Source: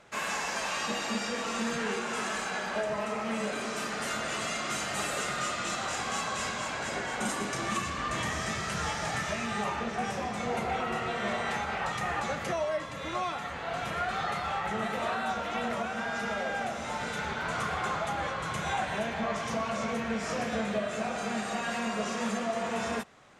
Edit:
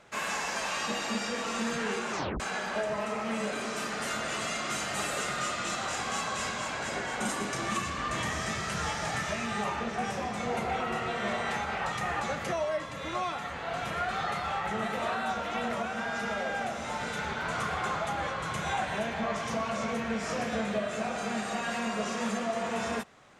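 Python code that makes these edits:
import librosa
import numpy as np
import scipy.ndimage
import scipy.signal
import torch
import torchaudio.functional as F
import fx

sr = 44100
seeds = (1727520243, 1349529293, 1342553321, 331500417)

y = fx.edit(x, sr, fx.tape_stop(start_s=2.11, length_s=0.29), tone=tone)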